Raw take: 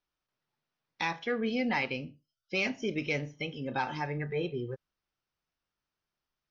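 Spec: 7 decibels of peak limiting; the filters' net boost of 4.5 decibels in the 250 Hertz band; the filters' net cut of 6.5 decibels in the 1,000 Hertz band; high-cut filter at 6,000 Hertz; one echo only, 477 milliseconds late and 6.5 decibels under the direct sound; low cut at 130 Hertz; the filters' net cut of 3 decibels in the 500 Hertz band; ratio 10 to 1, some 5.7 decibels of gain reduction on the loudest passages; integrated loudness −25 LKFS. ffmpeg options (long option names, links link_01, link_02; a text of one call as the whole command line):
ffmpeg -i in.wav -af "highpass=130,lowpass=6000,equalizer=frequency=250:width_type=o:gain=7,equalizer=frequency=500:width_type=o:gain=-4.5,equalizer=frequency=1000:width_type=o:gain=-7,acompressor=threshold=-29dB:ratio=10,alimiter=level_in=3.5dB:limit=-24dB:level=0:latency=1,volume=-3.5dB,aecho=1:1:477:0.473,volume=12dB" out.wav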